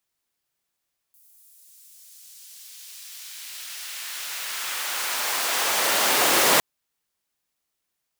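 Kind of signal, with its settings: swept filtered noise pink, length 5.46 s highpass, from 12 kHz, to 390 Hz, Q 0.79, exponential, gain ramp +32 dB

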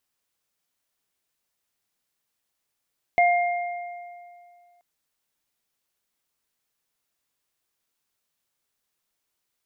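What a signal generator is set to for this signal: sine partials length 1.63 s, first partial 702 Hz, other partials 2.12 kHz, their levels -5 dB, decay 2.26 s, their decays 1.80 s, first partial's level -15 dB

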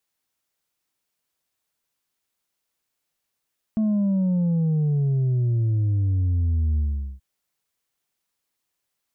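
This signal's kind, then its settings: sub drop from 220 Hz, over 3.43 s, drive 3 dB, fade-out 0.42 s, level -19 dB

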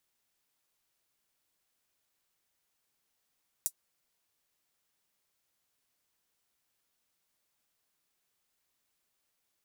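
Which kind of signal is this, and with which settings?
closed hi-hat, high-pass 7.7 kHz, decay 0.07 s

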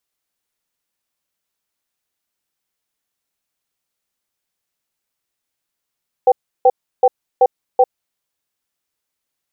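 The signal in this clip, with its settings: cadence 503 Hz, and 776 Hz, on 0.05 s, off 0.33 s, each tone -9.5 dBFS 1.65 s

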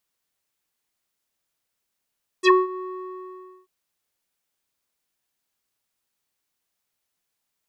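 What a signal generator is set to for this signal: synth note square F#4 12 dB/octave, low-pass 930 Hz, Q 4.8, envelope 3.5 oct, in 0.08 s, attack 50 ms, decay 0.19 s, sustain -18.5 dB, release 0.91 s, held 0.33 s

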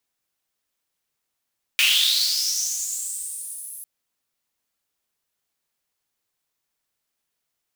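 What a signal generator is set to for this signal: swept filtered noise pink, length 2.05 s highpass, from 2.5 kHz, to 11 kHz, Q 7.1, linear, gain ramp -18.5 dB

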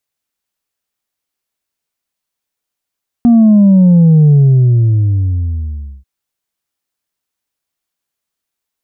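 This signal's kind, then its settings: sub drop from 240 Hz, over 2.79 s, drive 2 dB, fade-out 1.73 s, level -4 dB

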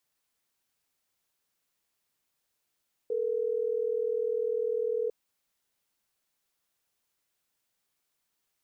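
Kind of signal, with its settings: call progress tone ringback tone, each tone -29.5 dBFS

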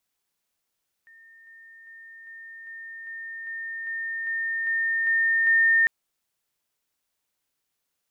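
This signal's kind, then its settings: level ladder 1.82 kHz -49 dBFS, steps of 3 dB, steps 12, 0.40 s 0.00 s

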